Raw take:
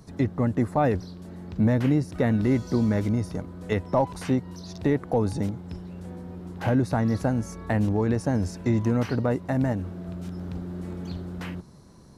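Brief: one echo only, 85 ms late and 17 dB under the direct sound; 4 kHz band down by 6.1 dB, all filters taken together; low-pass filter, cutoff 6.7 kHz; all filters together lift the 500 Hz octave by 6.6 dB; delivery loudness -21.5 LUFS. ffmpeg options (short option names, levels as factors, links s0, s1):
-af "lowpass=6700,equalizer=f=500:t=o:g=8,equalizer=f=4000:t=o:g=-7.5,aecho=1:1:85:0.141,volume=1.19"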